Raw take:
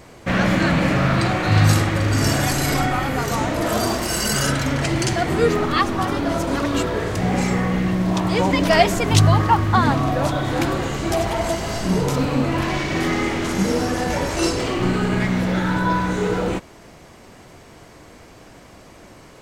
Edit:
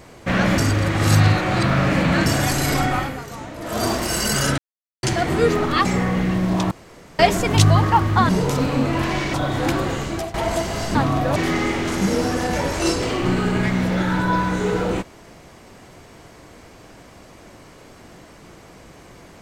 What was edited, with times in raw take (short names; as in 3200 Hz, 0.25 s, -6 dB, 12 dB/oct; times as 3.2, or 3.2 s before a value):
0.58–2.26 reverse
2.99–3.84 dip -12 dB, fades 0.30 s quadratic
4.58–5.03 mute
5.85–7.42 cut
8.28–8.76 room tone
9.86–10.27 swap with 11.88–12.93
10.82–11.27 fade out equal-power, to -17.5 dB